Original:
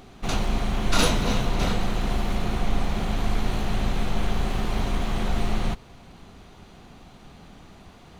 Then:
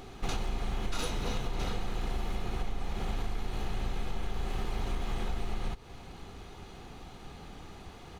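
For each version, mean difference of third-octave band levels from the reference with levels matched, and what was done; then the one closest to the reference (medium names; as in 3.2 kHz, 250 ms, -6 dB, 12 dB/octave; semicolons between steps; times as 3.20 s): 4.5 dB: comb 2.4 ms, depth 32%; compression 6:1, threshold -29 dBFS, peak gain reduction 15.5 dB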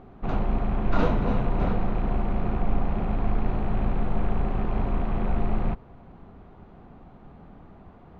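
8.0 dB: rattle on loud lows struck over -26 dBFS, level -25 dBFS; low-pass 1.2 kHz 12 dB/octave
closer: first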